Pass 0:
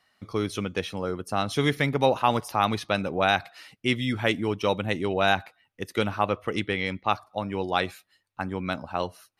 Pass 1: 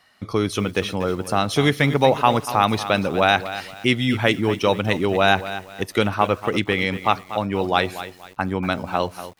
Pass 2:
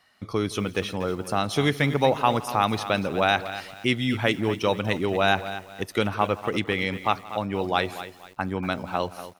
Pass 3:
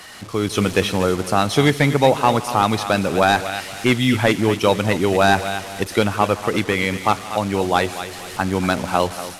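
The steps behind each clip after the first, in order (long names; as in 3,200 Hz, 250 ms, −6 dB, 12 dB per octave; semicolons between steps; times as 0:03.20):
in parallel at −1.5 dB: downward compressor 10 to 1, threshold −32 dBFS, peak gain reduction 16.5 dB; on the sum: feedback echo at a low word length 239 ms, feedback 35%, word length 7 bits, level −12.5 dB; level +4 dB
single-tap delay 168 ms −21 dB; level −4.5 dB
linear delta modulator 64 kbit/s, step −34 dBFS; automatic gain control gain up to 11.5 dB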